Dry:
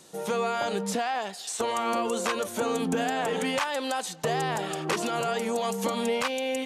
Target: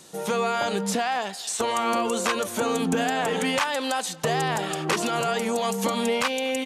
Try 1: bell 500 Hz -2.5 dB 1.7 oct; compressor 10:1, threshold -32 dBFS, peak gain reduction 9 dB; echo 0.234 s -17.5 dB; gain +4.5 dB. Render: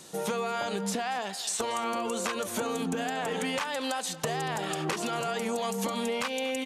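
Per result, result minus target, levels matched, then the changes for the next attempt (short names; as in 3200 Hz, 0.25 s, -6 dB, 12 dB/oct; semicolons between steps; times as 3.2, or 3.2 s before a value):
compressor: peak gain reduction +9 dB; echo-to-direct +7 dB
remove: compressor 10:1, threshold -32 dBFS, peak gain reduction 9 dB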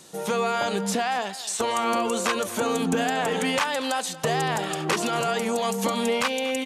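echo-to-direct +7 dB
change: echo 0.234 s -24.5 dB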